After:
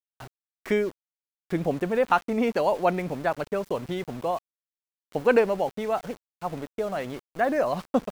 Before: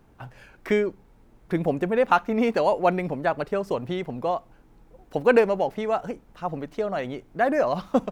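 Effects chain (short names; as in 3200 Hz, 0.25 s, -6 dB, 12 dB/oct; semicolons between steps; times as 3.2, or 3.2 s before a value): sample gate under -37.5 dBFS; gain -2 dB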